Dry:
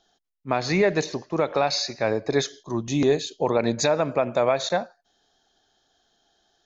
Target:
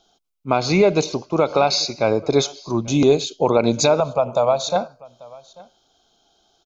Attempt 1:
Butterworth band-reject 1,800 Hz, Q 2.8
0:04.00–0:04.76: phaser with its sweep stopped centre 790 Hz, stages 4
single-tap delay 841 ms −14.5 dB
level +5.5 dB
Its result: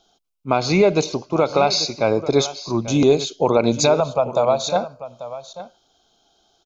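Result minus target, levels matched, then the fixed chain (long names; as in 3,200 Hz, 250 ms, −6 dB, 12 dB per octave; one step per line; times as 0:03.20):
echo-to-direct +8.5 dB
Butterworth band-reject 1,800 Hz, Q 2.8
0:04.00–0:04.76: phaser with its sweep stopped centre 790 Hz, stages 4
single-tap delay 841 ms −23 dB
level +5.5 dB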